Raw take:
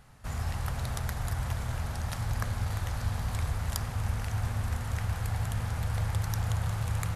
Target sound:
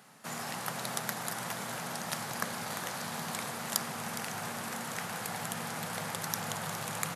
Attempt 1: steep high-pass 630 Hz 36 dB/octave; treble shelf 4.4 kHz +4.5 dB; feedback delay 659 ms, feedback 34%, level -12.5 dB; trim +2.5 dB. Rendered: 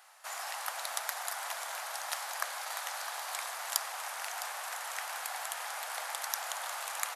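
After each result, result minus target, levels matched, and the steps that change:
echo 246 ms late; 500 Hz band -4.5 dB
change: feedback delay 413 ms, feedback 34%, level -12.5 dB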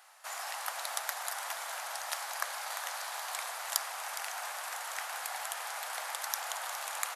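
500 Hz band -4.5 dB
change: steep high-pass 170 Hz 36 dB/octave

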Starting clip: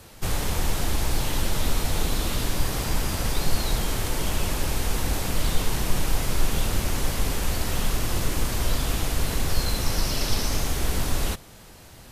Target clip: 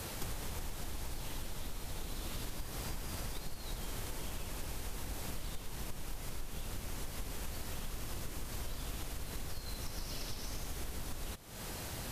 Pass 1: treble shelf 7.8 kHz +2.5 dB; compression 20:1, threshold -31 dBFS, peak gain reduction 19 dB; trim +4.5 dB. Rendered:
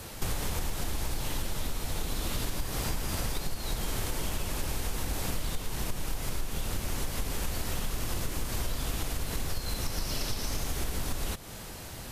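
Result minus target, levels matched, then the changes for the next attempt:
compression: peak gain reduction -9 dB
change: compression 20:1, threshold -40.5 dBFS, peak gain reduction 28 dB

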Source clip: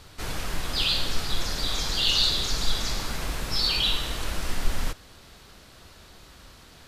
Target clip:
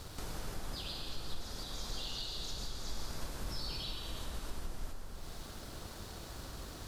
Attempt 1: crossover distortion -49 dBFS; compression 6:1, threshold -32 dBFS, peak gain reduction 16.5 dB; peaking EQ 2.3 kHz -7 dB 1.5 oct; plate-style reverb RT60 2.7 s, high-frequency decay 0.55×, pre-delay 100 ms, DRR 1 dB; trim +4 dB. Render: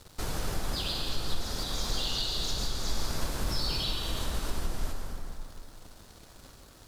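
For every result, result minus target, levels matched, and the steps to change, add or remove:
compression: peak gain reduction -9.5 dB; crossover distortion: distortion +11 dB
change: compression 6:1, threshold -43.5 dBFS, peak gain reduction 26 dB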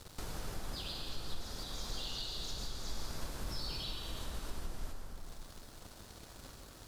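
crossover distortion: distortion +11 dB
change: crossover distortion -60.5 dBFS

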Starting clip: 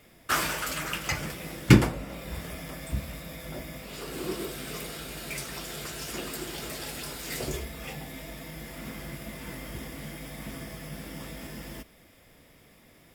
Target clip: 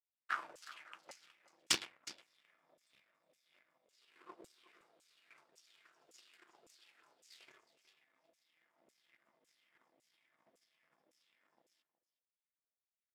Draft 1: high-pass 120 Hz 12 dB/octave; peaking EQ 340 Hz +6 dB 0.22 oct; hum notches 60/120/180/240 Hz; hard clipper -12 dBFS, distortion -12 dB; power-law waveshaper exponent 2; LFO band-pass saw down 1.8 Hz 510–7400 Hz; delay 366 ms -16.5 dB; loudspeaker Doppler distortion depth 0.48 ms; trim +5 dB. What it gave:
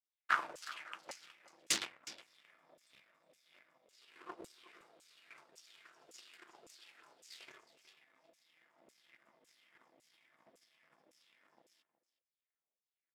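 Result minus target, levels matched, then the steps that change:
hard clipper: distortion +14 dB
change: hard clipper -5.5 dBFS, distortion -25 dB

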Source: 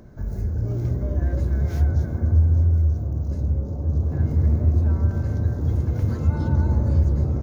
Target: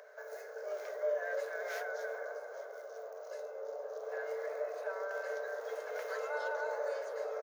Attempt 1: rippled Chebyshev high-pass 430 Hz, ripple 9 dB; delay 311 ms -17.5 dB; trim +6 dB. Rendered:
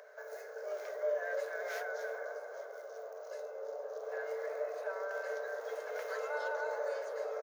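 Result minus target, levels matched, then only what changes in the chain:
echo-to-direct +11 dB
change: delay 311 ms -28.5 dB

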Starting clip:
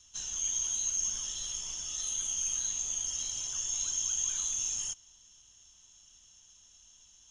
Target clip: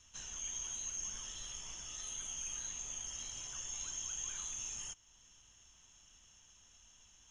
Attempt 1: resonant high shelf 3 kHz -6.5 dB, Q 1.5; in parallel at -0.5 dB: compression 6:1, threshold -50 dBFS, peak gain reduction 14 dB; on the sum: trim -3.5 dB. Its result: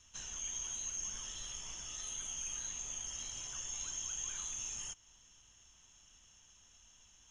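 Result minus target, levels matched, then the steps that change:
compression: peak gain reduction -6 dB
change: compression 6:1, threshold -57.5 dBFS, peak gain reduction 20 dB

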